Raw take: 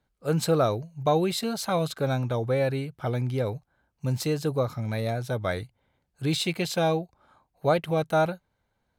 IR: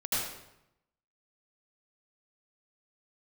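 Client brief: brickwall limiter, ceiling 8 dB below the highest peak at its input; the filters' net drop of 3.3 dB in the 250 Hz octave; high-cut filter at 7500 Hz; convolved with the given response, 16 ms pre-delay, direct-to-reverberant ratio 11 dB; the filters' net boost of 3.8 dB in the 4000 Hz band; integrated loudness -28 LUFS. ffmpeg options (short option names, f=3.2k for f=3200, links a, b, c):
-filter_complex "[0:a]lowpass=7.5k,equalizer=f=250:t=o:g=-5.5,equalizer=f=4k:t=o:g=4.5,alimiter=limit=-19.5dB:level=0:latency=1,asplit=2[a][b];[1:a]atrim=start_sample=2205,adelay=16[c];[b][c]afir=irnorm=-1:irlink=0,volume=-18.5dB[d];[a][d]amix=inputs=2:normalize=0,volume=2dB"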